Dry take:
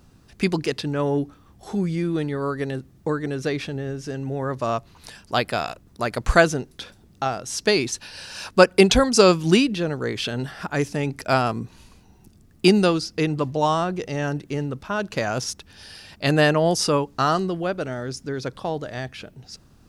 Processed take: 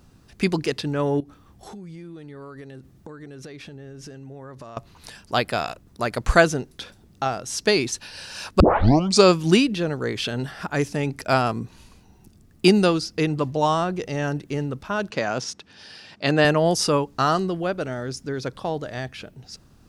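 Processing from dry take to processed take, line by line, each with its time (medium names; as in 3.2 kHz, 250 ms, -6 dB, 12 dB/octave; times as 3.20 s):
1.20–4.77 s: compression 12:1, threshold -36 dBFS
8.60 s: tape start 0.63 s
15.10–16.45 s: band-pass 150–6100 Hz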